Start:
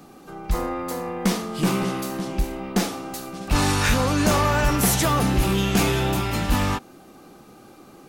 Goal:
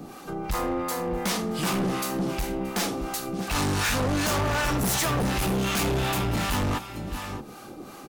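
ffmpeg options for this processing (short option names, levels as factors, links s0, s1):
-filter_complex "[0:a]aecho=1:1:625:0.168,acrossover=split=690[s0][s1];[s0]aeval=exprs='val(0)*(1-0.7/2+0.7/2*cos(2*PI*2.7*n/s))':c=same[s2];[s1]aeval=exprs='val(0)*(1-0.7/2-0.7/2*cos(2*PI*2.7*n/s))':c=same[s3];[s2][s3]amix=inputs=2:normalize=0,asoftclip=type=hard:threshold=0.0447,alimiter=level_in=2.37:limit=0.0631:level=0:latency=1:release=367,volume=0.422,volume=2.66"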